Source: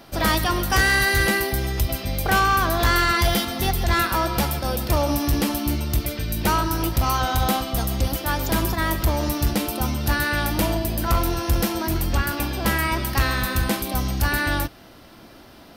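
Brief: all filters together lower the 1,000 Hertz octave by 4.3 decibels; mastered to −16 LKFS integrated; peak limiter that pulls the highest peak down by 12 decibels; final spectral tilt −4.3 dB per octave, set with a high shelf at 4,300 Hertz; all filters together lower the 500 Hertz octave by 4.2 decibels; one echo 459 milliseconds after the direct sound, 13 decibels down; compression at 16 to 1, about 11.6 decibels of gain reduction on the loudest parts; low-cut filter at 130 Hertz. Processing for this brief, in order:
high-pass filter 130 Hz
parametric band 500 Hz −4.5 dB
parametric band 1,000 Hz −4 dB
high-shelf EQ 4,300 Hz −5.5 dB
downward compressor 16 to 1, threshold −30 dBFS
brickwall limiter −29 dBFS
single-tap delay 459 ms −13 dB
level +21.5 dB

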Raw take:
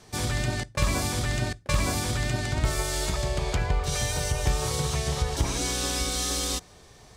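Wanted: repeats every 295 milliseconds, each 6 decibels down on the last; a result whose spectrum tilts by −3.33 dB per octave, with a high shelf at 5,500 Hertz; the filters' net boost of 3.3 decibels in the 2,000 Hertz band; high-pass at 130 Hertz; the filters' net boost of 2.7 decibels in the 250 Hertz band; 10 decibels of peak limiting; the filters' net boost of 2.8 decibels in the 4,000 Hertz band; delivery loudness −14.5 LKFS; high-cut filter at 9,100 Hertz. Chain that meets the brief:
high-pass filter 130 Hz
low-pass filter 9,100 Hz
parametric band 250 Hz +4.5 dB
parametric band 2,000 Hz +3.5 dB
parametric band 4,000 Hz +6 dB
high-shelf EQ 5,500 Hz −8 dB
brickwall limiter −22.5 dBFS
repeating echo 295 ms, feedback 50%, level −6 dB
level +15.5 dB

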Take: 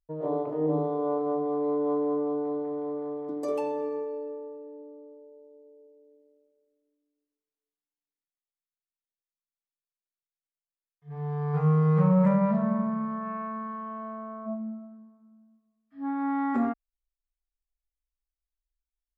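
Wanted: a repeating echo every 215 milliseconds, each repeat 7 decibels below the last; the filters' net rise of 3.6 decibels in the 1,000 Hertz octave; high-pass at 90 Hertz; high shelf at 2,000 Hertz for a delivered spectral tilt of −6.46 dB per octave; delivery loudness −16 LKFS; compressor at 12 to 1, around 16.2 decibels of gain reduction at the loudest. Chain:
high-pass filter 90 Hz
parametric band 1,000 Hz +6 dB
high-shelf EQ 2,000 Hz −7 dB
downward compressor 12 to 1, threshold −34 dBFS
repeating echo 215 ms, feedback 45%, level −7 dB
level +22 dB

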